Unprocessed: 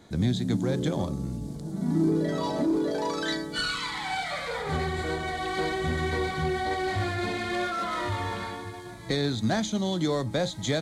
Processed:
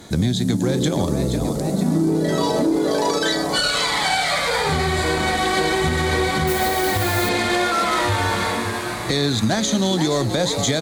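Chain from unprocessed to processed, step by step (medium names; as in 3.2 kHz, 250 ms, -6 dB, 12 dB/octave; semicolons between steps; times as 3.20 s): frequency-shifting echo 475 ms, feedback 58%, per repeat +130 Hz, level -11 dB; 6.47–7.29 s: modulation noise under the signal 17 dB; treble shelf 5.3 kHz +10 dB; compression, threshold -27 dBFS, peak gain reduction 7.5 dB; Chebyshev shaper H 3 -24 dB, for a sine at -18 dBFS; loudness maximiser +21 dB; trim -8 dB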